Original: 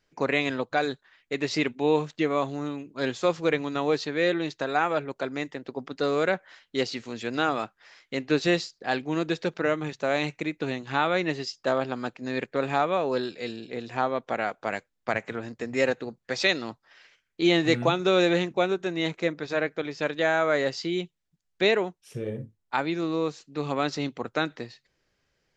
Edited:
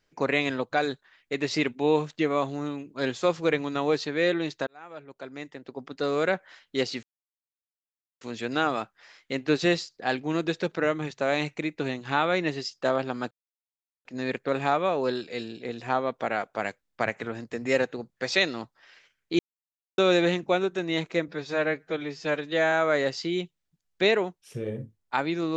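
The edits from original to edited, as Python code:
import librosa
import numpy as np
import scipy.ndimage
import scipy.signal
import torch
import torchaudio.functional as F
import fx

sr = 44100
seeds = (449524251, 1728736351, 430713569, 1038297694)

y = fx.edit(x, sr, fx.fade_in_span(start_s=4.67, length_s=1.68),
    fx.insert_silence(at_s=7.03, length_s=1.18),
    fx.insert_silence(at_s=12.13, length_s=0.74),
    fx.silence(start_s=17.47, length_s=0.59),
    fx.stretch_span(start_s=19.36, length_s=0.96, factor=1.5), tone=tone)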